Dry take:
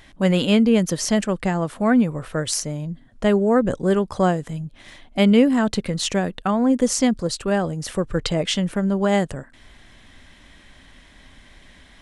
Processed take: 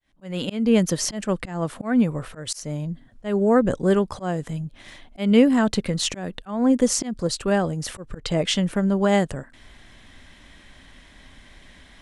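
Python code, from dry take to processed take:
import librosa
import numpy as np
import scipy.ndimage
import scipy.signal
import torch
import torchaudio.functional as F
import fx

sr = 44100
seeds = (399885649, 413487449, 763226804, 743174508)

y = fx.fade_in_head(x, sr, length_s=0.78)
y = fx.auto_swell(y, sr, attack_ms=206.0)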